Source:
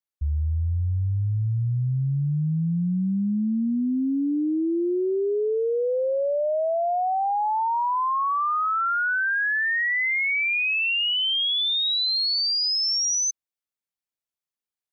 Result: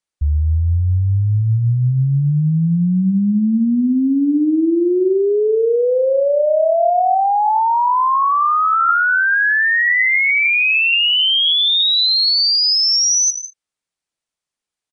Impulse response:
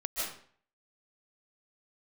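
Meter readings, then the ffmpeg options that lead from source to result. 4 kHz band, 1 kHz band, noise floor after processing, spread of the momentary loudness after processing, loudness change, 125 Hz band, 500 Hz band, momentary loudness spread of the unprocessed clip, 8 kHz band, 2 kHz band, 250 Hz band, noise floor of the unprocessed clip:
+9.0 dB, +9.0 dB, below −85 dBFS, 5 LU, +9.0 dB, +8.5 dB, +9.0 dB, 5 LU, can't be measured, +9.0 dB, +9.0 dB, below −85 dBFS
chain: -filter_complex "[0:a]asplit=2[link_01][link_02];[1:a]atrim=start_sample=2205,afade=type=out:start_time=0.27:duration=0.01,atrim=end_sample=12348[link_03];[link_02][link_03]afir=irnorm=-1:irlink=0,volume=-12.5dB[link_04];[link_01][link_04]amix=inputs=2:normalize=0,aresample=22050,aresample=44100,volume=7dB"

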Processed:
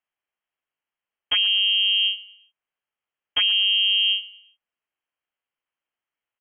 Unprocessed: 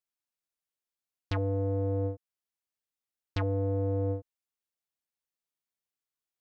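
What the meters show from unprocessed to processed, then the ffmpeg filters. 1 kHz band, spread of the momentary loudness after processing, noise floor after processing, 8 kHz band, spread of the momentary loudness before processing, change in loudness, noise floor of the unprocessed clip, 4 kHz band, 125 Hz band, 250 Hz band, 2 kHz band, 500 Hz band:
−1.5 dB, 8 LU, below −85 dBFS, can't be measured, 8 LU, +13.5 dB, below −85 dBFS, +38.0 dB, below −30 dB, below −20 dB, +24.0 dB, below −20 dB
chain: -af "aecho=1:1:116|232|348:0.126|0.0478|0.0182,lowpass=frequency=2800:width_type=q:width=0.5098,lowpass=frequency=2800:width_type=q:width=0.6013,lowpass=frequency=2800:width_type=q:width=0.9,lowpass=frequency=2800:width_type=q:width=2.563,afreqshift=-3300,volume=9dB"

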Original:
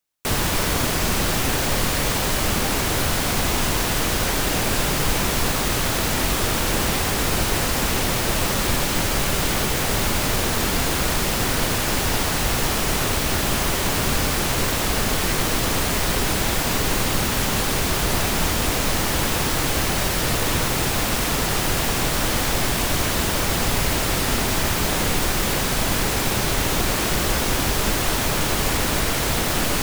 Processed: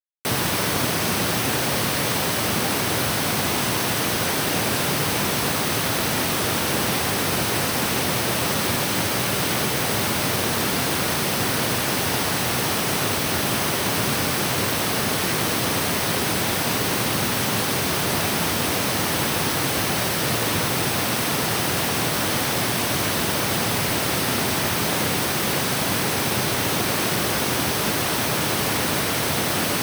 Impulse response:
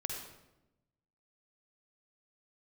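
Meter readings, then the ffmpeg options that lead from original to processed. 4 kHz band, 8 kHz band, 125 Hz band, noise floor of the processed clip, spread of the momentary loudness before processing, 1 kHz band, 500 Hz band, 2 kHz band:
0.0 dB, −1.0 dB, −2.0 dB, −24 dBFS, 0 LU, 0.0 dB, 0.0 dB, 0.0 dB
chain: -af "highpass=frequency=97:width=0.5412,highpass=frequency=97:width=1.3066,bandreject=frequency=7100:width=6.9,acrusher=bits=6:dc=4:mix=0:aa=0.000001"

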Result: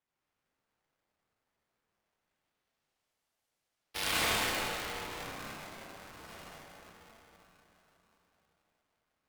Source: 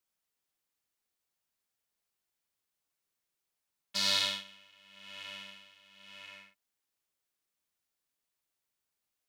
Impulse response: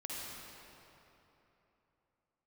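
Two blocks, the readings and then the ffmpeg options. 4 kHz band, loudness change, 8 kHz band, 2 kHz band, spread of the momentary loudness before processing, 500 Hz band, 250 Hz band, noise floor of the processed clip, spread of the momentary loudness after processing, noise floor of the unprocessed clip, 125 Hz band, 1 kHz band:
−4.0 dB, −2.0 dB, +3.0 dB, +5.5 dB, 22 LU, +9.0 dB, +8.0 dB, below −85 dBFS, 21 LU, below −85 dBFS, +10.0 dB, +8.5 dB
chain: -filter_complex "[0:a]asubboost=boost=3:cutoff=240,acrusher=samples=10:mix=1:aa=0.000001:lfo=1:lforange=16:lforate=0.23[link_01];[1:a]atrim=start_sample=2205,asetrate=32193,aresample=44100[link_02];[link_01][link_02]afir=irnorm=-1:irlink=0,aeval=exprs='val(0)*sgn(sin(2*PI*670*n/s))':channel_layout=same,volume=-1.5dB"

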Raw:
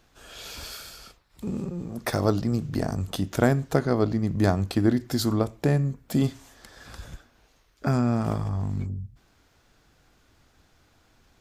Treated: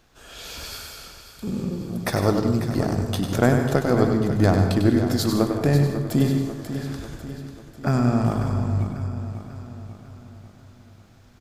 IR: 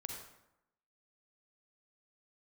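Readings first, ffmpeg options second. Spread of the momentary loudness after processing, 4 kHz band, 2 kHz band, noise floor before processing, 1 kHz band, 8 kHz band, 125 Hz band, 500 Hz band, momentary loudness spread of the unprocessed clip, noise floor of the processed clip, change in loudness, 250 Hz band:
18 LU, +3.5 dB, +4.0 dB, −63 dBFS, +4.0 dB, +4.0 dB, +4.5 dB, +4.0 dB, 18 LU, −50 dBFS, +4.0 dB, +4.0 dB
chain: -filter_complex "[0:a]aeval=exprs='0.422*(cos(1*acos(clip(val(0)/0.422,-1,1)))-cos(1*PI/2))+0.0075*(cos(6*acos(clip(val(0)/0.422,-1,1)))-cos(6*PI/2))':channel_layout=same,aecho=1:1:544|1088|1632|2176|2720|3264:0.282|0.147|0.0762|0.0396|0.0206|0.0107,asplit=2[link_01][link_02];[1:a]atrim=start_sample=2205,adelay=98[link_03];[link_02][link_03]afir=irnorm=-1:irlink=0,volume=-2dB[link_04];[link_01][link_04]amix=inputs=2:normalize=0,volume=2dB"

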